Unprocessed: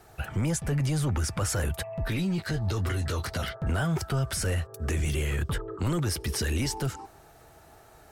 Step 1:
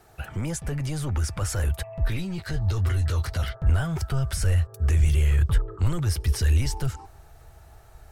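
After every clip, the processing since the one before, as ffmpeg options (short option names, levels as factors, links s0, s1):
-af "asubboost=boost=7.5:cutoff=85,volume=0.841"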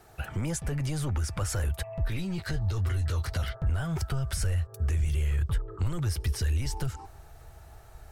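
-af "acompressor=threshold=0.0447:ratio=2.5"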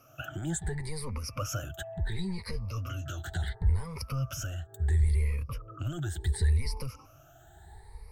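-af "afftfilt=real='re*pow(10,22/40*sin(2*PI*(0.9*log(max(b,1)*sr/1024/100)/log(2)-(0.71)*(pts-256)/sr)))':imag='im*pow(10,22/40*sin(2*PI*(0.9*log(max(b,1)*sr/1024/100)/log(2)-(0.71)*(pts-256)/sr)))':win_size=1024:overlap=0.75,volume=0.422"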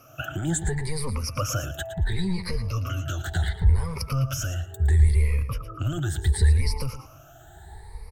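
-af "aecho=1:1:113|226:0.251|0.0402,volume=2.24"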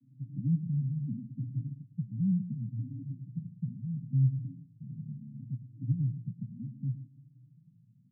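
-af "asuperpass=centerf=180:order=20:qfactor=1.1"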